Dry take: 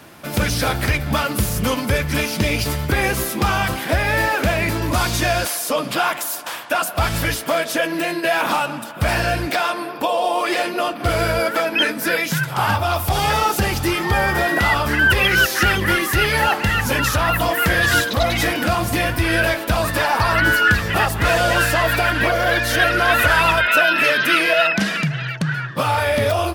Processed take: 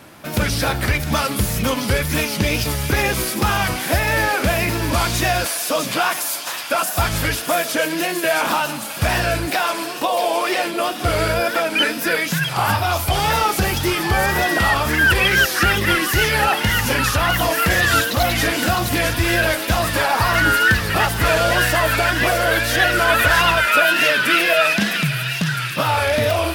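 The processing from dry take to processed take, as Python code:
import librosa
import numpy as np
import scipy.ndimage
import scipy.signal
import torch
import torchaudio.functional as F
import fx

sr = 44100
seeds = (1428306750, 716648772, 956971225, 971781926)

y = fx.echo_wet_highpass(x, sr, ms=660, feedback_pct=75, hz=3500.0, wet_db=-4)
y = fx.wow_flutter(y, sr, seeds[0], rate_hz=2.1, depth_cents=78.0)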